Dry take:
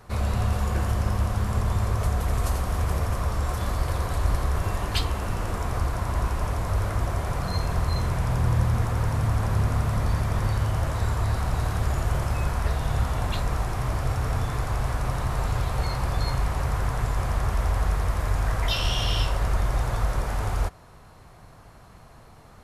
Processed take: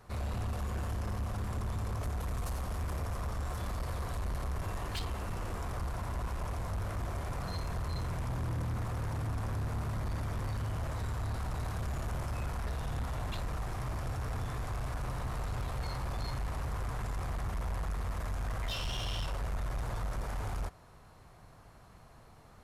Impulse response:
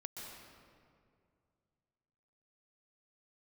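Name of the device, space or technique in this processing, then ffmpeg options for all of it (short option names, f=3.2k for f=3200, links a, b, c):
saturation between pre-emphasis and de-emphasis: -af "highshelf=f=5.2k:g=6.5,asoftclip=type=tanh:threshold=-23.5dB,highshelf=f=5.2k:g=-6.5,volume=-7dB"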